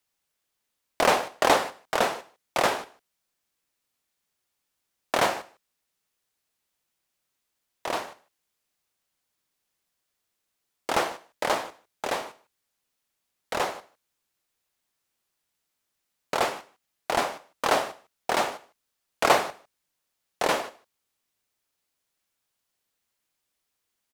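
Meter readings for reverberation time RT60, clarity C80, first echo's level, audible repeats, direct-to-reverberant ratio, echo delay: none, none, -23.0 dB, 1, none, 0.152 s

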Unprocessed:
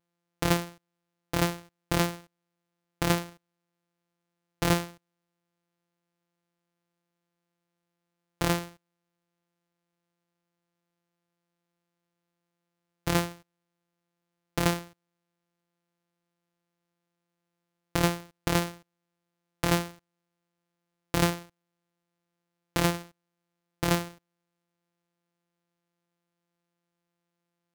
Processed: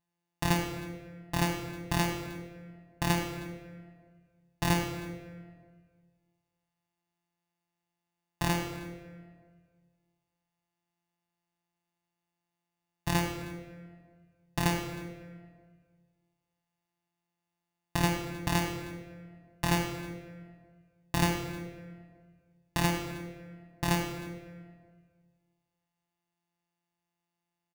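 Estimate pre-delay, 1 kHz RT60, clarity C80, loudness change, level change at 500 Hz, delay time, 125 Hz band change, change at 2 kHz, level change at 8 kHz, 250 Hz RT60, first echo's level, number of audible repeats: 15 ms, 1.5 s, 6.0 dB, -3.5 dB, -4.5 dB, 0.312 s, -1.0 dB, -1.0 dB, -2.5 dB, 1.9 s, -20.0 dB, 1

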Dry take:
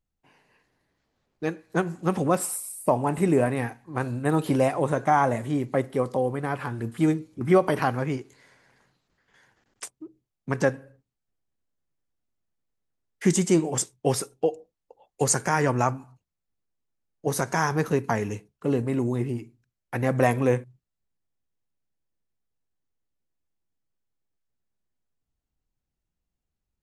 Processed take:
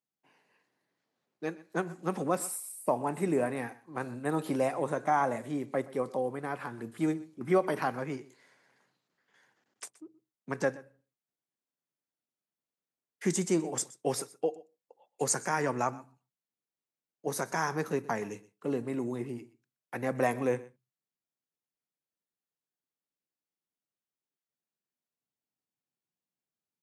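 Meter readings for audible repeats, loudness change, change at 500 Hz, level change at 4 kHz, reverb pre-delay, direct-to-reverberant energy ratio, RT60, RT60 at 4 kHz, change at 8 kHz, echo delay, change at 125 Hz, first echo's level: 1, -7.0 dB, -6.5 dB, -7.0 dB, none, none, none, none, -6.0 dB, 0.124 s, -12.5 dB, -20.0 dB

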